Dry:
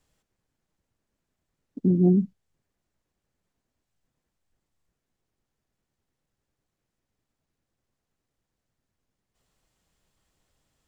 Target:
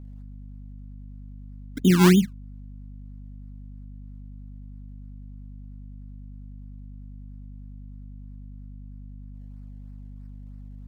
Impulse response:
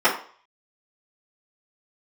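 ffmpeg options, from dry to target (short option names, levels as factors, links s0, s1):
-af "acrusher=samples=25:mix=1:aa=0.000001:lfo=1:lforange=25:lforate=3.1,aeval=exprs='val(0)+0.00708*(sin(2*PI*50*n/s)+sin(2*PI*2*50*n/s)/2+sin(2*PI*3*50*n/s)/3+sin(2*PI*4*50*n/s)/4+sin(2*PI*5*50*n/s)/5)':c=same,volume=1.5"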